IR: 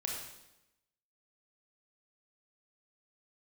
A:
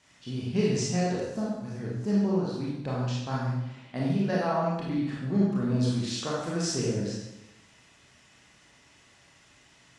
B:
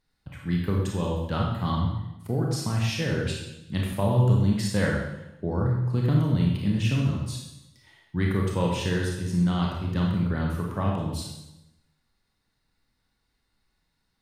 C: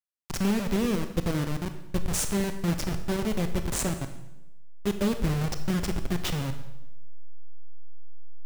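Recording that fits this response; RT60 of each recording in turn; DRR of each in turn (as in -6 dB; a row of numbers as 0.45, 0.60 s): B; 0.90, 0.90, 0.90 s; -6.0, -2.0, 7.5 dB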